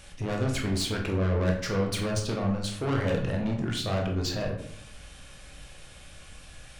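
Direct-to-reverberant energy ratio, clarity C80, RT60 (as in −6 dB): 0.5 dB, 10.0 dB, 0.70 s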